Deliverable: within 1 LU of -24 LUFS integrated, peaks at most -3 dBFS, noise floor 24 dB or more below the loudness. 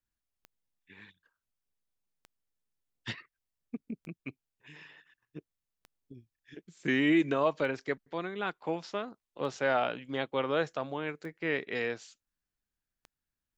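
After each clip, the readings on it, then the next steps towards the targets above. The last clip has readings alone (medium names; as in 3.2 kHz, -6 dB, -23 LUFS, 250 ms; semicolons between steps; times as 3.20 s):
clicks found 8; loudness -32.5 LUFS; peak level -15.5 dBFS; loudness target -24.0 LUFS
-> de-click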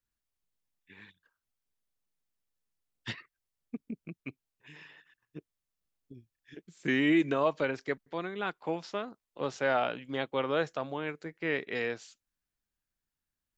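clicks found 0; loudness -32.5 LUFS; peak level -15.5 dBFS; loudness target -24.0 LUFS
-> trim +8.5 dB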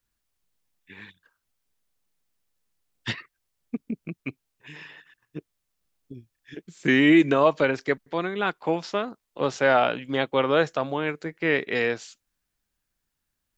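loudness -24.0 LUFS; peak level -7.0 dBFS; noise floor -81 dBFS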